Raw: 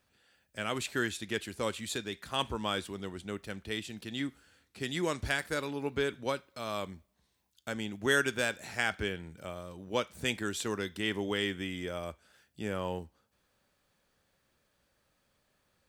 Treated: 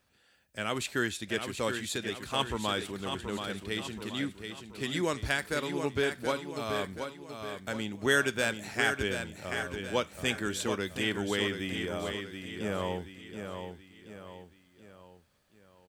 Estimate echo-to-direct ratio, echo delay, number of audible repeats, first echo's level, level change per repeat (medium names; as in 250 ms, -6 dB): -6.0 dB, 728 ms, 4, -7.0 dB, -7.0 dB